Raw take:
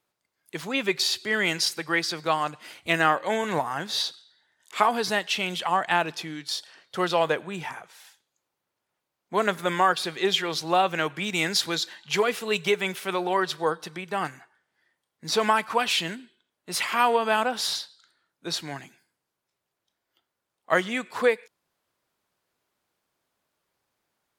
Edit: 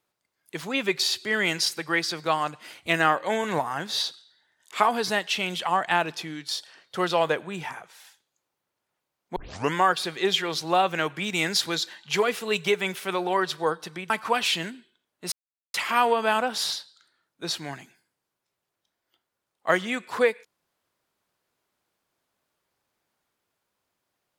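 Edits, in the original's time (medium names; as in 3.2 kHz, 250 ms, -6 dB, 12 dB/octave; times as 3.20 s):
9.36 s: tape start 0.38 s
14.10–15.55 s: delete
16.77 s: insert silence 0.42 s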